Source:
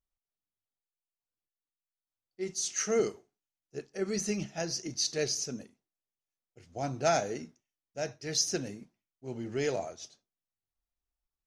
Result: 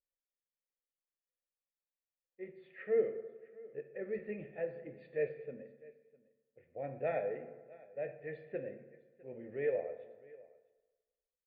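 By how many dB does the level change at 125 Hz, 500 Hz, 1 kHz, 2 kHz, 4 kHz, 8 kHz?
−11.5 dB, −3.0 dB, −12.0 dB, −7.5 dB, below −35 dB, below −40 dB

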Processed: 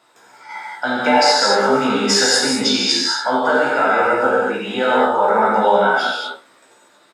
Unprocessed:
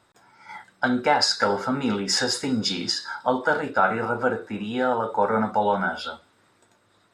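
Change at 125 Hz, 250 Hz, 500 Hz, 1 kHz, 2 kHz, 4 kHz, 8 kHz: 0.0, +5.0, +8.5, +8.0, +8.5, +9.0, +10.0 decibels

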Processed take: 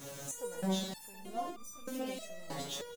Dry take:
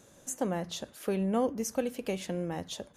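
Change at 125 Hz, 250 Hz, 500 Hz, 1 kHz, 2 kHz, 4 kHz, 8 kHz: −6.0, −7.5, −8.5, −4.0, −4.5, 0.0, −3.5 decibels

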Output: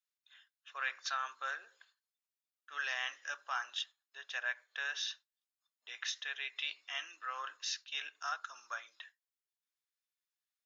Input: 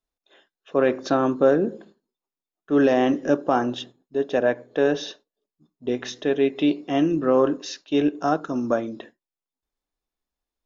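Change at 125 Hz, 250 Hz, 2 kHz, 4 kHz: below −40 dB, below −40 dB, −4.5 dB, −3.5 dB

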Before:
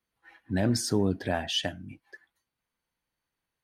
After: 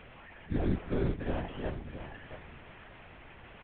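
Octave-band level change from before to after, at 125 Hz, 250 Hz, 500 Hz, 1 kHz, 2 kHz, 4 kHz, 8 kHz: −3.5 dB, −6.0 dB, −5.0 dB, −6.0 dB, −6.5 dB, −20.0 dB, below −40 dB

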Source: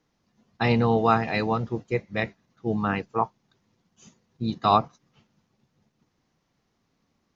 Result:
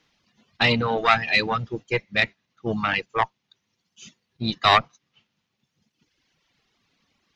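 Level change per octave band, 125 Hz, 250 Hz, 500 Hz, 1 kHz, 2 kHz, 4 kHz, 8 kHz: −2.5 dB, −3.0 dB, −1.0 dB, +1.5 dB, +9.5 dB, +12.0 dB, can't be measured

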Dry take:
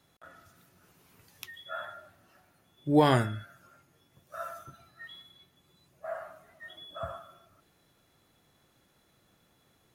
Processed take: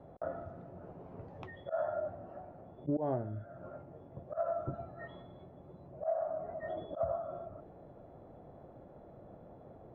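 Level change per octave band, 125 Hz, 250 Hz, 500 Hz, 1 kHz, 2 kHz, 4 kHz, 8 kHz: −8.5 dB, −9.0 dB, −1.0 dB, −7.0 dB, −13.0 dB, below −20 dB, below −25 dB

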